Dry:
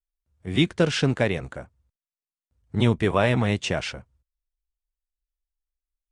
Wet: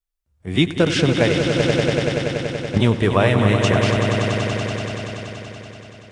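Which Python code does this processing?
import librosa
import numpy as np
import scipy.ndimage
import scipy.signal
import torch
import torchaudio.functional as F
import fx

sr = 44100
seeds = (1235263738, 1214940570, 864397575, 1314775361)

y = fx.echo_swell(x, sr, ms=95, loudest=5, wet_db=-9)
y = fx.transient(y, sr, attack_db=9, sustain_db=5, at=(1.59, 2.78))
y = y * 10.0 ** (3.5 / 20.0)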